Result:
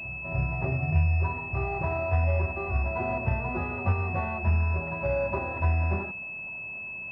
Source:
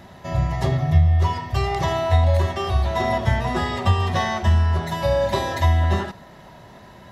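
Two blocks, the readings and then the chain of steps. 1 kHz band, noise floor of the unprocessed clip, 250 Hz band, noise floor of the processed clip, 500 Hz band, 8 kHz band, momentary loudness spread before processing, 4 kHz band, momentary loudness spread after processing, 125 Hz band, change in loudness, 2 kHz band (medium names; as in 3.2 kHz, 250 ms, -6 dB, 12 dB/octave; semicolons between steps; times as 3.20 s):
-9.0 dB, -45 dBFS, -7.5 dB, -38 dBFS, -7.5 dB, no reading, 6 LU, under -25 dB, 9 LU, -7.5 dB, -7.5 dB, -1.5 dB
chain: pre-echo 295 ms -14.5 dB; class-D stage that switches slowly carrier 2.6 kHz; trim -7.5 dB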